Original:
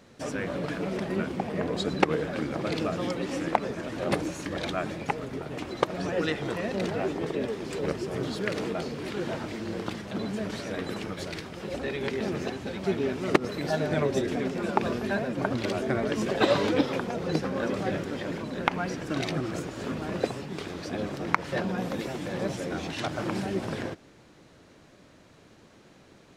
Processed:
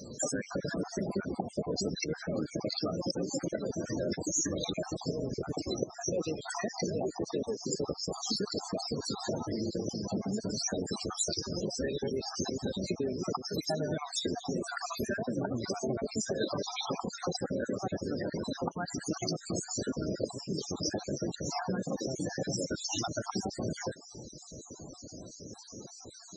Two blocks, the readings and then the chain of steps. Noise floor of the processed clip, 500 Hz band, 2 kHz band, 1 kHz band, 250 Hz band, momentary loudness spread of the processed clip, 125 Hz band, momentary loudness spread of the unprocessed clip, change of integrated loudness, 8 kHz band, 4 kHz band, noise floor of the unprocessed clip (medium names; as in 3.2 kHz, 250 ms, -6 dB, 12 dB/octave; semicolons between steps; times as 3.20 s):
-51 dBFS, -5.0 dB, -10.0 dB, -8.0 dB, -4.5 dB, 4 LU, -4.0 dB, 8 LU, -4.0 dB, +9.5 dB, +0.5 dB, -55 dBFS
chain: random holes in the spectrogram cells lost 49%; in parallel at -7 dB: one-sided clip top -23 dBFS; on the sum: compression 5:1, threshold -39 dBFS, peak gain reduction 20.5 dB; resonant high shelf 4 kHz +12.5 dB, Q 1.5; loudest bins only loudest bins 32; trim +7.5 dB